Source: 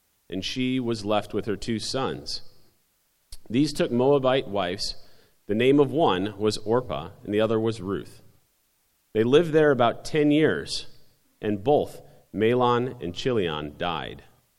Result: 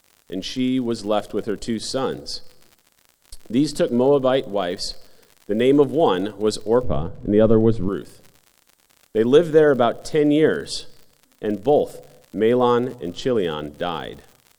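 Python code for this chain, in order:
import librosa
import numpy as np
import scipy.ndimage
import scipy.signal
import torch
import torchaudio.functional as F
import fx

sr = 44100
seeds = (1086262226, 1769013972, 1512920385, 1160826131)

y = fx.graphic_eq_31(x, sr, hz=(100, 250, 500, 2500, 8000), db=(-9, 4, 6, -7, 5))
y = fx.dmg_crackle(y, sr, seeds[0], per_s=82.0, level_db=-36.0)
y = fx.riaa(y, sr, side='playback', at=(6.83, 7.89))
y = y * librosa.db_to_amplitude(1.5)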